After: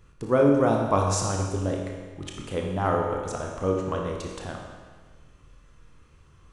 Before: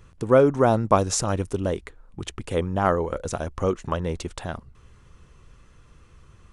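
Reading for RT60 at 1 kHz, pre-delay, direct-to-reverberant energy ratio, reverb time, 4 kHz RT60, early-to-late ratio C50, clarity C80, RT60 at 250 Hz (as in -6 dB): 1.5 s, 21 ms, 0.0 dB, 1.5 s, 1.4 s, 2.0 dB, 4.0 dB, 1.5 s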